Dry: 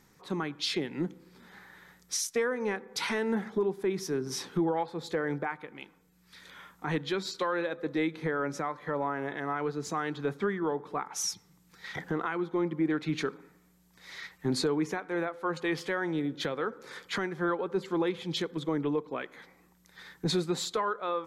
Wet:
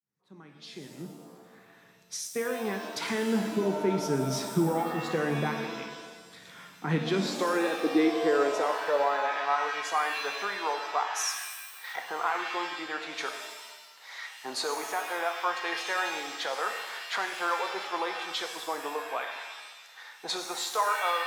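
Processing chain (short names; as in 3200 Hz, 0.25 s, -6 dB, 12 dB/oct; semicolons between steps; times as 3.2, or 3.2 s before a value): opening faded in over 4.00 s; high-pass sweep 130 Hz -> 770 Hz, 6.45–9.51; shimmer reverb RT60 1.2 s, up +7 st, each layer -2 dB, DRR 5.5 dB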